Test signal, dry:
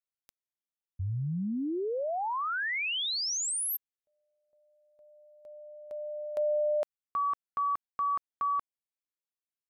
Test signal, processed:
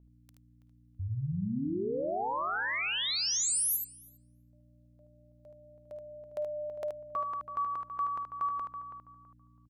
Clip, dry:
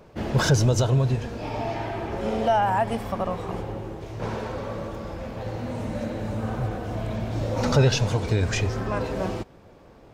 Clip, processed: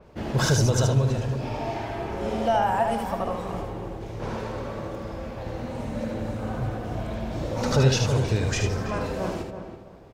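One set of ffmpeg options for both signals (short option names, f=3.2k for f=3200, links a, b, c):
-filter_complex "[0:a]asplit=2[a][b];[b]adelay=328,lowpass=f=1.6k:p=1,volume=-8dB,asplit=2[c][d];[d]adelay=328,lowpass=f=1.6k:p=1,volume=0.27,asplit=2[e][f];[f]adelay=328,lowpass=f=1.6k:p=1,volume=0.27[g];[c][e][g]amix=inputs=3:normalize=0[h];[a][h]amix=inputs=2:normalize=0,aeval=exprs='val(0)+0.00158*(sin(2*PI*60*n/s)+sin(2*PI*2*60*n/s)/2+sin(2*PI*3*60*n/s)/3+sin(2*PI*4*60*n/s)/4+sin(2*PI*5*60*n/s)/5)':c=same,asplit=2[i][j];[j]aecho=0:1:53|76:0.15|0.531[k];[i][k]amix=inputs=2:normalize=0,adynamicequalizer=threshold=0.00891:dfrequency=4900:dqfactor=0.7:tfrequency=4900:tqfactor=0.7:attack=5:release=100:ratio=0.375:range=2:mode=boostabove:tftype=highshelf,volume=-2.5dB"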